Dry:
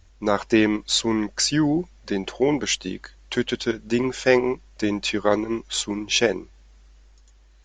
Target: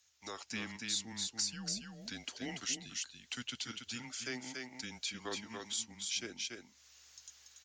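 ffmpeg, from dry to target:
ffmpeg -i in.wav -filter_complex "[0:a]aecho=1:1:285:0.501,afreqshift=-120,dynaudnorm=framelen=190:gausssize=5:maxgain=12dB,aderivative,acrossover=split=350[link_01][link_02];[link_02]acompressor=threshold=-48dB:ratio=2[link_03];[link_01][link_03]amix=inputs=2:normalize=0" out.wav

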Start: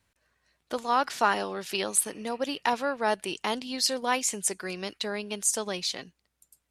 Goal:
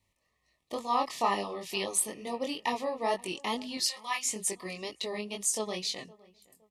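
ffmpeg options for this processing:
ffmpeg -i in.wav -filter_complex "[0:a]asettb=1/sr,asplit=3[link_01][link_02][link_03];[link_01]atrim=end=3.774[link_04];[link_02]atrim=start=3.77:end=4.23,asetpts=PTS-STARTPTS,afade=type=in:duration=0.004:curve=qsin,afade=type=out:start_time=0.456:duration=0.004:curve=qsin,highpass=frequency=940:width=0.5412,highpass=frequency=940:width=1.3066[link_05];[link_03]atrim=start=4.226[link_06];[link_04][link_05]acrossfade=duration=0.004:curve1=hsin:curve2=qsin[link_07];[link_07][link_06]acrossfade=duration=0.004:curve1=qsin:curve2=hsin,flanger=delay=20:depth=3.9:speed=2.2,asuperstop=centerf=1500:order=20:qfactor=3.4,asplit=2[link_08][link_09];[link_09]adelay=514,lowpass=frequency=1500:poles=1,volume=-22dB,asplit=2[link_10][link_11];[link_11]adelay=514,lowpass=frequency=1500:poles=1,volume=0.35[link_12];[link_08][link_10][link_12]amix=inputs=3:normalize=0" out.wav

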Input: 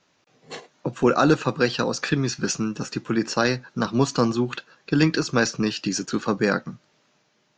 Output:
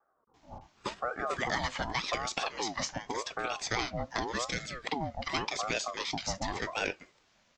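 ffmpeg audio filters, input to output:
ffmpeg -i in.wav -filter_complex "[0:a]acrossover=split=580[link_01][link_02];[link_02]adelay=340[link_03];[link_01][link_03]amix=inputs=2:normalize=0,acrossover=split=710|1700|7300[link_04][link_05][link_06][link_07];[link_04]acompressor=threshold=-33dB:ratio=4[link_08];[link_05]acompressor=threshold=-33dB:ratio=4[link_09];[link_06]acompressor=threshold=-31dB:ratio=4[link_10];[link_07]acompressor=threshold=-56dB:ratio=4[link_11];[link_08][link_09][link_10][link_11]amix=inputs=4:normalize=0,aeval=exprs='val(0)*sin(2*PI*690*n/s+690*0.45/0.87*sin(2*PI*0.87*n/s))':channel_layout=same" out.wav

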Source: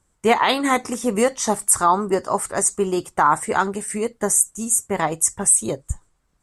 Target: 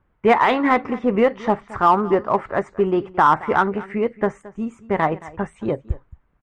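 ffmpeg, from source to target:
ffmpeg -i in.wav -filter_complex "[0:a]lowpass=frequency=2500:width=0.5412,lowpass=frequency=2500:width=1.3066,asplit=2[link_01][link_02];[link_02]asoftclip=type=hard:threshold=-16dB,volume=-8.5dB[link_03];[link_01][link_03]amix=inputs=2:normalize=0,aecho=1:1:222:0.112" out.wav

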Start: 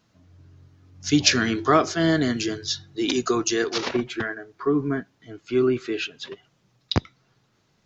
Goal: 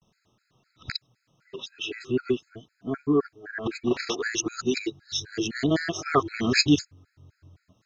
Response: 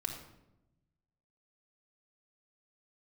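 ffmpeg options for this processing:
-af "areverse,afftfilt=real='re*gt(sin(2*PI*3.9*pts/sr)*(1-2*mod(floor(b*sr/1024/1300),2)),0)':imag='im*gt(sin(2*PI*3.9*pts/sr)*(1-2*mod(floor(b*sr/1024/1300),2)),0)':win_size=1024:overlap=0.75"

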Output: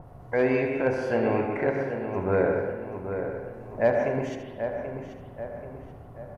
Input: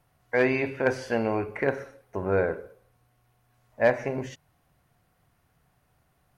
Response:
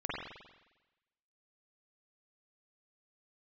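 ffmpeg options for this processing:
-filter_complex "[0:a]acrossover=split=1000[link_01][link_02];[link_01]acompressor=mode=upward:threshold=-29dB:ratio=2.5[link_03];[link_02]alimiter=level_in=1dB:limit=-24dB:level=0:latency=1:release=339,volume=-1dB[link_04];[link_03][link_04]amix=inputs=2:normalize=0,asplit=2[link_05][link_06];[link_06]adelay=783,lowpass=frequency=2500:poles=1,volume=-8dB,asplit=2[link_07][link_08];[link_08]adelay=783,lowpass=frequency=2500:poles=1,volume=0.49,asplit=2[link_09][link_10];[link_10]adelay=783,lowpass=frequency=2500:poles=1,volume=0.49,asplit=2[link_11][link_12];[link_12]adelay=783,lowpass=frequency=2500:poles=1,volume=0.49,asplit=2[link_13][link_14];[link_14]adelay=783,lowpass=frequency=2500:poles=1,volume=0.49,asplit=2[link_15][link_16];[link_16]adelay=783,lowpass=frequency=2500:poles=1,volume=0.49[link_17];[link_05][link_07][link_09][link_11][link_13][link_15][link_17]amix=inputs=7:normalize=0,asplit=2[link_18][link_19];[1:a]atrim=start_sample=2205,adelay=76[link_20];[link_19][link_20]afir=irnorm=-1:irlink=0,volume=-7.5dB[link_21];[link_18][link_21]amix=inputs=2:normalize=0,aresample=32000,aresample=44100,adynamicequalizer=threshold=0.00501:dfrequency=3900:dqfactor=0.7:tfrequency=3900:tqfactor=0.7:attack=5:release=100:ratio=0.375:range=2:mode=cutabove:tftype=highshelf"

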